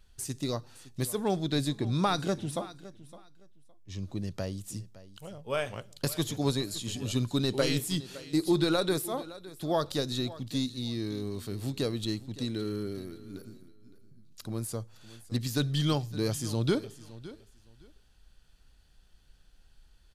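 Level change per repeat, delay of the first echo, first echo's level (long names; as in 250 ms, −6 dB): −14.0 dB, 563 ms, −17.5 dB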